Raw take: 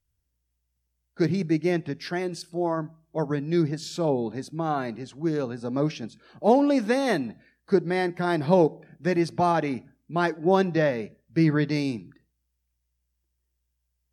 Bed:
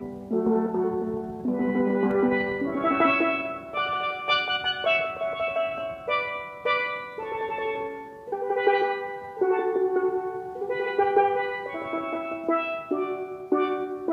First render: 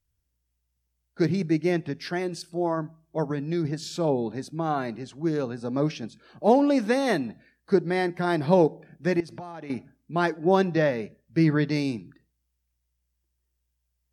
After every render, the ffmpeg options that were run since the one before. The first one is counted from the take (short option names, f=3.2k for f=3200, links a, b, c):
-filter_complex "[0:a]asettb=1/sr,asplit=3[a][b][c];[a]atrim=end=3.254[d];[b]atrim=start=3.25:end=3.65,asetpts=PTS-STARTPTS,afade=t=in:d=0.004:c=qsin,afade=t=out:st=0.396:d=0.004:c=qsin,acompressor=threshold=-23dB:ratio=3:attack=3.2:release=140:knee=1:detection=peak[e];[c]atrim=start=3.646[f];[d][e]acrossfade=d=0.004:c1=hsin:c2=qsin[g];[g][f]acrossfade=d=0.004:c1=qsin:c2=hsin,asettb=1/sr,asplit=3[h][i][j];[h]atrim=end=9.204[k];[i]atrim=start=9.2:end=9.7,asetpts=PTS-STARTPTS,afade=t=in:d=0.004:c=qsin,afade=t=out:st=0.496:d=0.004:c=qsin,acompressor=threshold=-35dB:ratio=8:attack=3.2:release=140:knee=1:detection=peak[l];[j]atrim=start=9.696[m];[k][l]acrossfade=d=0.004:c1=hsin:c2=qsin[n];[n][m]acrossfade=d=0.004:c1=qsin:c2=hsin"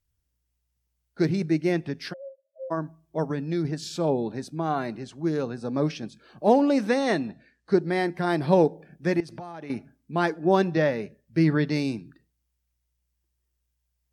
-filter_complex "[0:a]asplit=3[a][b][c];[a]afade=t=out:st=2.12:d=0.02[d];[b]asuperpass=centerf=580:order=20:qfactor=4.8,afade=t=in:st=2.12:d=0.02,afade=t=out:st=2.7:d=0.02[e];[c]afade=t=in:st=2.7:d=0.02[f];[d][e][f]amix=inputs=3:normalize=0,asettb=1/sr,asplit=3[g][h][i];[g]atrim=end=6.894[j];[h]atrim=start=6.89:end=7.81,asetpts=PTS-STARTPTS,afade=t=in:d=0.004:c=qsin,afade=t=out:st=0.916:d=0.004:c=qsin,lowpass=f=8.5k:w=0.5412,lowpass=f=8.5k:w=1.3066[k];[i]atrim=start=7.806[l];[j][k]acrossfade=d=0.004:c1=hsin:c2=qsin[m];[m][l]acrossfade=d=0.004:c1=qsin:c2=hsin"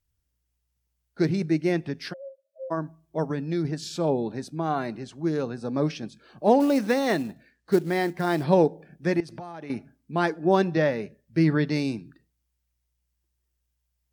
-filter_complex "[0:a]asettb=1/sr,asplit=3[a][b][c];[a]atrim=end=6.604[d];[b]atrim=start=6.6:end=8.44,asetpts=PTS-STARTPTS,afade=t=in:d=0.004:c=qsin,afade=t=out:st=1.836:d=0.004:c=qsin,acrusher=bits=6:mode=log:mix=0:aa=0.000001[e];[c]atrim=start=8.436[f];[d][e]acrossfade=d=0.004:c1=hsin:c2=qsin[g];[g][f]acrossfade=d=0.004:c1=qsin:c2=hsin"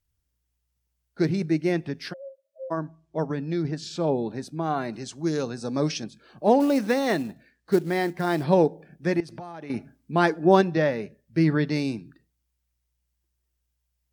-filter_complex "[0:a]asettb=1/sr,asplit=3[a][b][c];[a]atrim=end=2.804[d];[b]atrim=start=2.8:end=4.13,asetpts=PTS-STARTPTS,afade=t=in:d=0.004:c=qsin,afade=t=out:st=1.326:d=0.004:c=qsin,lowpass=7k[e];[c]atrim=start=4.126[f];[d][e]acrossfade=d=0.004:c1=hsin:c2=qsin[g];[g][f]acrossfade=d=0.004:c1=qsin:c2=hsin,asettb=1/sr,asplit=3[h][i][j];[h]atrim=end=4.934[k];[i]atrim=start=4.93:end=6.04,asetpts=PTS-STARTPTS,afade=t=in:d=0.004:c=qsin,afade=t=out:st=1.106:d=0.004:c=qsin,equalizer=f=6.7k:w=0.7:g=12[l];[j]atrim=start=6.036[m];[k][l]acrossfade=d=0.004:c1=hsin:c2=qsin[n];[n][m]acrossfade=d=0.004:c1=qsin:c2=hsin,asplit=3[o][p][q];[o]atrim=end=9.742[r];[p]atrim=start=9.738:end=10.612,asetpts=PTS-STARTPTS,volume=3.5dB[s];[q]atrim=start=10.608[t];[r][s]acrossfade=d=0.004:c1=hsin:c2=hsin[u];[u][t]acrossfade=d=0.004:c1=hsin:c2=hsin"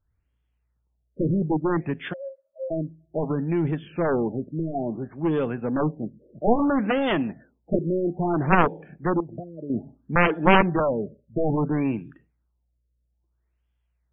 -af "aeval=exprs='0.631*(cos(1*acos(clip(val(0)/0.631,-1,1)))-cos(1*PI/2))+0.251*(cos(7*acos(clip(val(0)/0.631,-1,1)))-cos(7*PI/2))':c=same,afftfilt=real='re*lt(b*sr/1024,610*pow(3600/610,0.5+0.5*sin(2*PI*0.6*pts/sr)))':imag='im*lt(b*sr/1024,610*pow(3600/610,0.5+0.5*sin(2*PI*0.6*pts/sr)))':win_size=1024:overlap=0.75"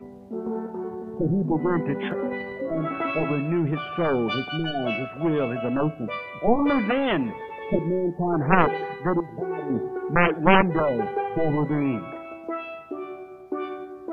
-filter_complex "[1:a]volume=-6.5dB[a];[0:a][a]amix=inputs=2:normalize=0"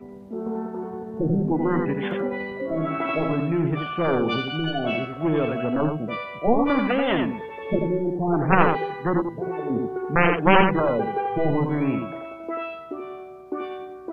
-af "aecho=1:1:86:0.562"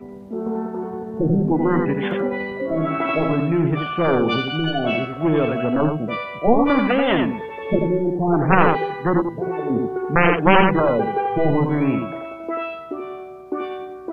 -af "volume=4dB,alimiter=limit=-1dB:level=0:latency=1"